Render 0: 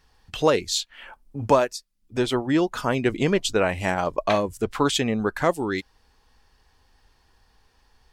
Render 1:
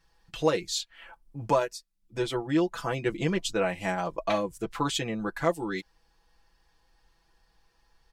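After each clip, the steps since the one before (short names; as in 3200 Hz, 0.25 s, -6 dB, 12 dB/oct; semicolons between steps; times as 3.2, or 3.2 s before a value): comb 6 ms, depth 81%; gain -8 dB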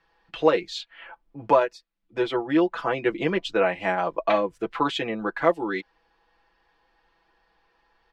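three-band isolator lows -14 dB, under 240 Hz, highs -24 dB, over 3600 Hz; gain +6 dB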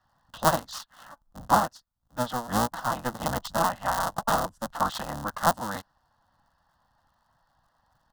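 cycle switcher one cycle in 3, inverted; fixed phaser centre 970 Hz, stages 4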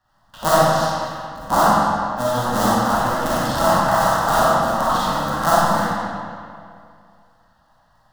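reverb RT60 2.3 s, pre-delay 5 ms, DRR -10 dB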